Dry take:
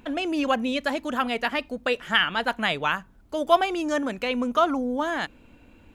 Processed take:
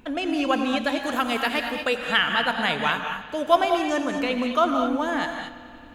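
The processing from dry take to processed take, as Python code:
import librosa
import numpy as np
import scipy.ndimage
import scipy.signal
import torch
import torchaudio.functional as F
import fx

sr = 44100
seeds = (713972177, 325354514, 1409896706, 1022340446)

y = fx.high_shelf(x, sr, hz=fx.line((0.99, 5100.0), (1.99, 8300.0)), db=10.0, at=(0.99, 1.99), fade=0.02)
y = fx.echo_bbd(y, sr, ms=89, stages=4096, feedback_pct=82, wet_db=-18.0)
y = fx.rev_gated(y, sr, seeds[0], gate_ms=250, shape='rising', drr_db=4.5)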